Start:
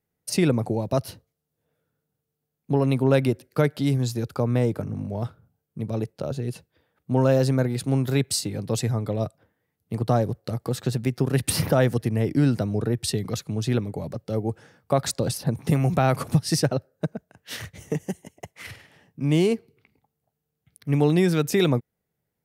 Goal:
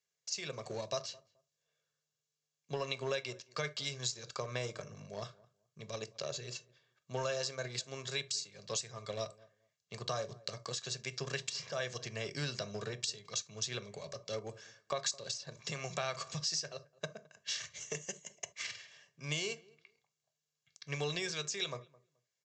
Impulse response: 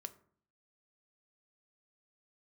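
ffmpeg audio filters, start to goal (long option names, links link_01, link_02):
-filter_complex "[0:a]aderivative,aecho=1:1:1.8:0.61[link_01];[1:a]atrim=start_sample=2205,atrim=end_sample=3528[link_02];[link_01][link_02]afir=irnorm=-1:irlink=0,asplit=2[link_03][link_04];[link_04]aeval=exprs='val(0)*gte(abs(val(0)),0.00376)':channel_layout=same,volume=-8dB[link_05];[link_03][link_05]amix=inputs=2:normalize=0,acompressor=threshold=-46dB:ratio=4,equalizer=frequency=140:width=1.5:gain=6,asplit=2[link_06][link_07];[link_07]adelay=214,lowpass=frequency=1100:poles=1,volume=-21.5dB,asplit=2[link_08][link_09];[link_09]adelay=214,lowpass=frequency=1100:poles=1,volume=0.2[link_10];[link_08][link_10]amix=inputs=2:normalize=0[link_11];[link_06][link_11]amix=inputs=2:normalize=0,aresample=16000,aresample=44100,volume=12dB"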